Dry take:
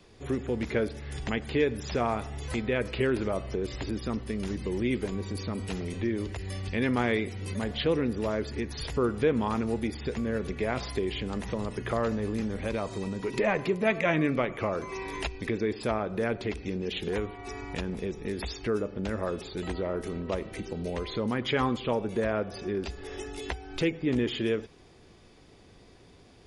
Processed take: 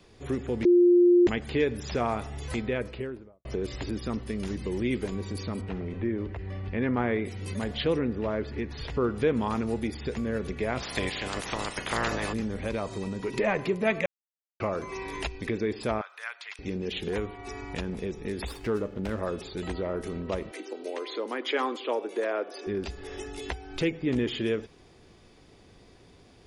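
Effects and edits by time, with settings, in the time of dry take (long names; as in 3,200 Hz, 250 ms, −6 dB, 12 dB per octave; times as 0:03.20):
0:00.65–0:01.27: beep over 352 Hz −15 dBFS
0:02.53–0:03.45: fade out and dull
0:05.61–0:07.25: low-pass filter 1,900 Hz
0:07.98–0:09.14: low-pass filter 2,400 Hz → 4,500 Hz
0:10.81–0:12.32: ceiling on every frequency bin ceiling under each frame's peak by 24 dB
0:14.06–0:14.60: silence
0:16.01–0:16.59: high-pass filter 1,100 Hz 24 dB per octave
0:18.47–0:19.20: windowed peak hold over 5 samples
0:20.51–0:22.67: Butterworth high-pass 280 Hz 48 dB per octave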